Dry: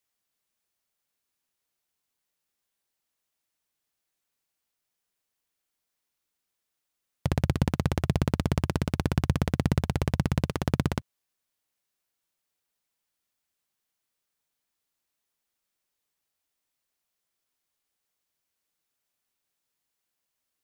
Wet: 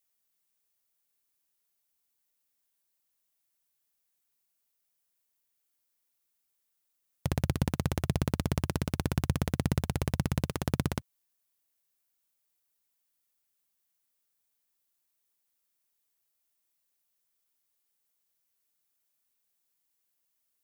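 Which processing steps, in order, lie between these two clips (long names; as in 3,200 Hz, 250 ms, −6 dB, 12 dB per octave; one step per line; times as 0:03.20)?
high-shelf EQ 8,300 Hz +11.5 dB
level −4 dB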